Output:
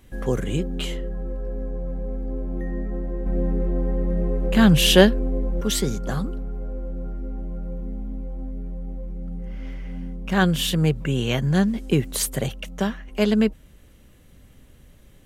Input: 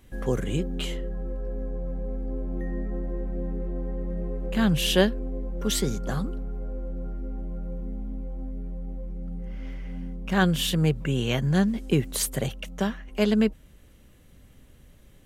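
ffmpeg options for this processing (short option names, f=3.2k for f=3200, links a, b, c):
-filter_complex "[0:a]asettb=1/sr,asplit=3[a][b][c];[a]atrim=end=3.264[d];[b]atrim=start=3.26:end=5.61,asetpts=PTS-STARTPTS,afade=t=in:d=0.004:c=qsin,afade=t=out:st=2.346:d=0.004:c=qsin,acontrast=31[e];[c]atrim=start=5.606[f];[d][e]acrossfade=d=0.004:c1=hsin:c2=qsin[g];[g][f]acrossfade=d=0.004:c1=qsin:c2=hsin,volume=2.5dB"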